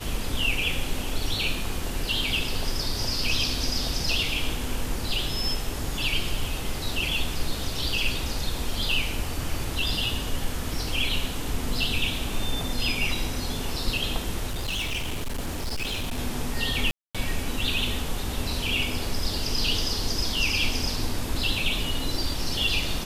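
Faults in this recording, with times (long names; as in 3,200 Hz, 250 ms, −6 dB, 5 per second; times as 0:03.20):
0:14.46–0:16.19: clipping −25.5 dBFS
0:16.91–0:17.15: drop-out 236 ms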